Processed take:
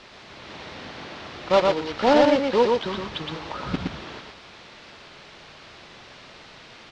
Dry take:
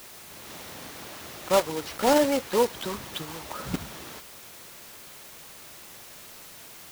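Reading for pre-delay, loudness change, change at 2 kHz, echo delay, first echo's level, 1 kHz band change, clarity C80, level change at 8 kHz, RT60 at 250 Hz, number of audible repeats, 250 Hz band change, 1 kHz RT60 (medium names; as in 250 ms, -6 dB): no reverb, +5.5 dB, +5.0 dB, 117 ms, -3.0 dB, +4.5 dB, no reverb, under -10 dB, no reverb, 1, +4.5 dB, no reverb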